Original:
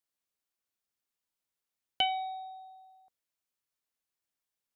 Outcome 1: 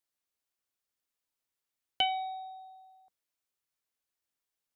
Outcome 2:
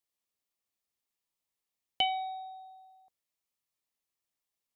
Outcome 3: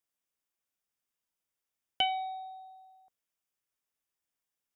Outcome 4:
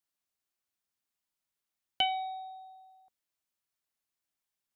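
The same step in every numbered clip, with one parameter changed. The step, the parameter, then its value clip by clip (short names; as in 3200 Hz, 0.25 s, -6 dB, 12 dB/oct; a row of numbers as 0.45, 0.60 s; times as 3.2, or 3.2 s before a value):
notch, frequency: 190, 1500, 4200, 480 Hz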